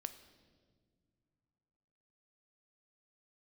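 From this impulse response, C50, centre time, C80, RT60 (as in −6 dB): 12.5 dB, 10 ms, 14.0 dB, non-exponential decay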